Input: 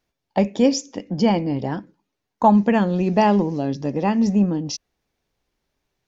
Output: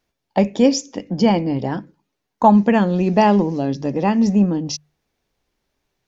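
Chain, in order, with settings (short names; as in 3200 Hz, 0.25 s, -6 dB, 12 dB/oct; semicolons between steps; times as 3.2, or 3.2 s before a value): notches 50/100/150 Hz; gain +2.5 dB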